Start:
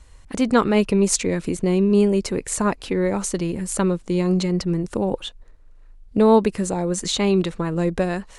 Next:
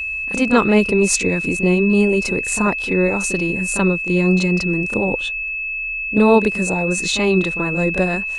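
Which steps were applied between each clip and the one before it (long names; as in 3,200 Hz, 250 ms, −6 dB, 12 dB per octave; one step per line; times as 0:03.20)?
steady tone 2,600 Hz −25 dBFS
backwards echo 33 ms −9.5 dB
level +2 dB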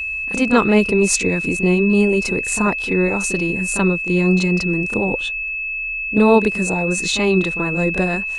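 notch filter 560 Hz, Q 17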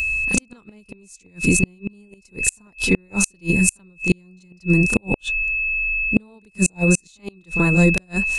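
bass and treble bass +9 dB, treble +14 dB
gate with flip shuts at −4 dBFS, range −38 dB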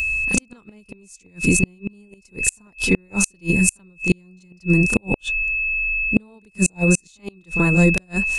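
notch filter 4,000 Hz, Q 19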